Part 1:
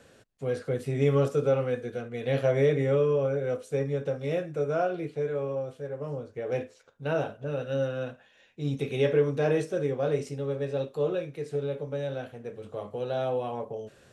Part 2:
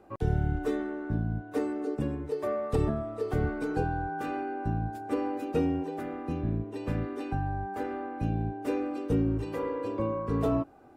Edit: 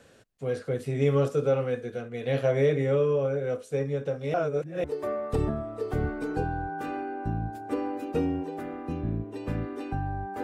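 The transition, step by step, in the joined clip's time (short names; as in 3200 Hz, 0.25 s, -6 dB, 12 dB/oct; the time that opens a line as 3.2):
part 1
4.34–4.84 reverse
4.84 switch to part 2 from 2.24 s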